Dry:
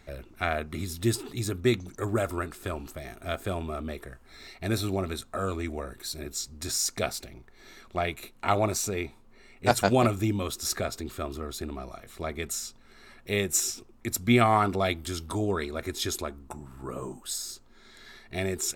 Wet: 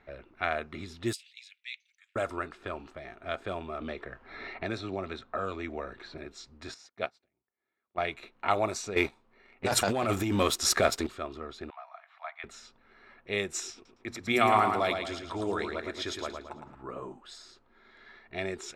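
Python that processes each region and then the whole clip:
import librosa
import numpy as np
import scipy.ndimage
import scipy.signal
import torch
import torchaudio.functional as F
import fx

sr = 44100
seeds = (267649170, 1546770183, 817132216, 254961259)

y = fx.chain(x, sr, fx.steep_highpass(hz=2200.0, slope=48),
    fx.peak_eq(hz=11000.0, db=-3.0, octaves=2.1), at=(1.13, 2.16))
y = fx.chain(y, sr, fx.air_absorb(metres=84.0),
    fx.band_squash(depth_pct=70), at=(3.81, 6.18))
y = fx.chain(y, sr, fx.highpass(hz=79.0, slope=12),
    fx.high_shelf(hz=4000.0, db=-4.5),
    fx.upward_expand(threshold_db=-45.0, expansion=2.5), at=(6.74, 7.98))
y = fx.chain(y, sr, fx.leveller(passes=2),
    fx.over_compress(threshold_db=-21.0, ratio=-1.0), at=(8.96, 11.07))
y = fx.chain(y, sr, fx.steep_highpass(hz=680.0, slope=72),
    fx.air_absorb(metres=170.0), at=(11.7, 12.44))
y = fx.chain(y, sr, fx.hum_notches(base_hz=60, count=4),
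    fx.echo_feedback(ms=111, feedback_pct=45, wet_db=-5.5), at=(13.74, 16.75))
y = fx.high_shelf(y, sr, hz=5300.0, db=-8.0)
y = fx.env_lowpass(y, sr, base_hz=2300.0, full_db=-20.0)
y = fx.low_shelf(y, sr, hz=270.0, db=-12.0)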